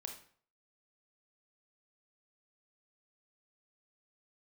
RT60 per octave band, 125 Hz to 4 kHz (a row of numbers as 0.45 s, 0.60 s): 0.55 s, 0.45 s, 0.50 s, 0.50 s, 0.45 s, 0.40 s